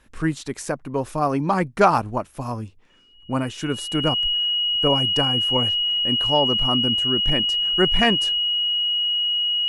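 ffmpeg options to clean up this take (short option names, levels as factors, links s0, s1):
-af "bandreject=f=2900:w=30"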